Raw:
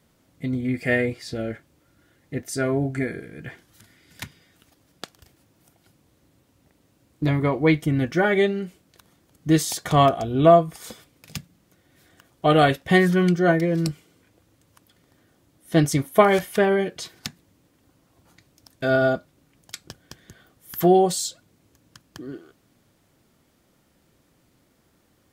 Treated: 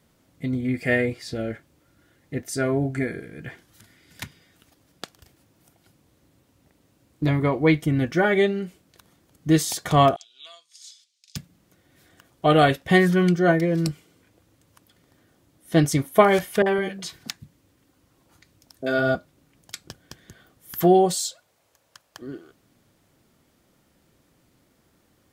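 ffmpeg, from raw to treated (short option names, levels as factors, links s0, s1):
-filter_complex "[0:a]asettb=1/sr,asplit=3[s0][s1][s2];[s0]atrim=end=10.164[s3];[s1]atrim=start=10.16:end=11.36,asetpts=PTS-STARTPTS,afade=t=in:d=0.004:c=qsin,afade=t=out:st=1.196:d=0.004:c=qsin,asuperpass=centerf=5200:order=4:qfactor=1.4[s4];[s2]atrim=start=11.356[s5];[s3][s4]acrossfade=d=0.004:c1=hsin:c2=qsin[s6];[s6][s5]acrossfade=d=0.004:c1=qsin:c2=hsin,asettb=1/sr,asplit=3[s7][s8][s9];[s7]atrim=end=16.624[s10];[s8]atrim=start=16.62:end=19.15,asetpts=PTS-STARTPTS,afade=t=in:d=0.004:c=qsin,afade=t=out:st=2.526:d=0.004:c=qsin,acrossover=split=170|650[s11][s12][s13];[s13]adelay=40[s14];[s11]adelay=160[s15];[s15][s12][s14]amix=inputs=3:normalize=0,atrim=end_sample=111573[s16];[s9]atrim=start=19.146[s17];[s10][s16]acrossfade=d=0.004:c1=hsin:c2=qsin[s18];[s18][s17]acrossfade=d=0.004:c1=qsin:c2=hsin,asettb=1/sr,asplit=3[s19][s20][s21];[s19]atrim=end=21.154[s22];[s20]atrim=start=21.15:end=22.22,asetpts=PTS-STARTPTS,afade=t=in:d=0.004:c=qsin,afade=t=out:st=1.066:d=0.004:c=qsin,lowshelf=f=410:t=q:w=1.5:g=-12.5[s23];[s21]atrim=start=22.216[s24];[s22][s23]acrossfade=d=0.004:c1=hsin:c2=qsin[s25];[s25][s24]acrossfade=d=0.004:c1=qsin:c2=hsin"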